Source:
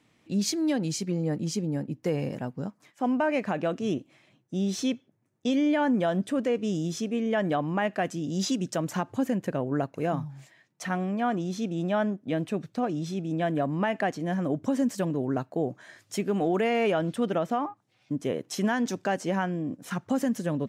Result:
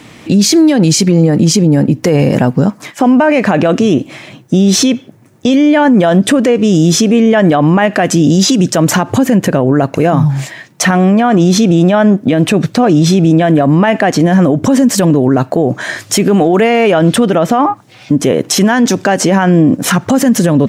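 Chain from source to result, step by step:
downward compressor, threshold −29 dBFS, peak gain reduction 8 dB
boost into a limiter +30.5 dB
level −1 dB

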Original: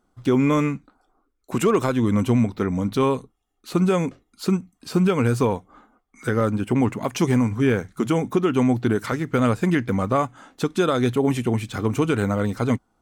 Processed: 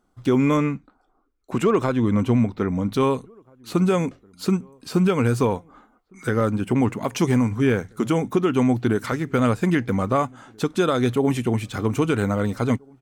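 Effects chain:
0:00.57–0:02.89: low-pass filter 3,500 Hz 6 dB per octave
slap from a distant wall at 280 metres, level −29 dB

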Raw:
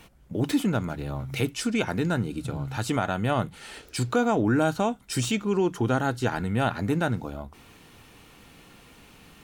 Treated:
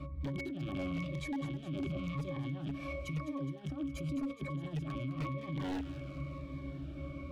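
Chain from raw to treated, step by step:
loose part that buzzes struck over −34 dBFS, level −17 dBFS
speed change +29%
compressor whose output falls as the input rises −31 dBFS, ratio −0.5
resonances in every octave C#, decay 0.24 s
wave folding −38.5 dBFS
brickwall limiter −47 dBFS, peak gain reduction 8.5 dB
delay with a high-pass on its return 208 ms, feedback 63%, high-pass 1,500 Hz, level −10 dB
phaser whose notches keep moving one way falling 0.95 Hz
level +16.5 dB

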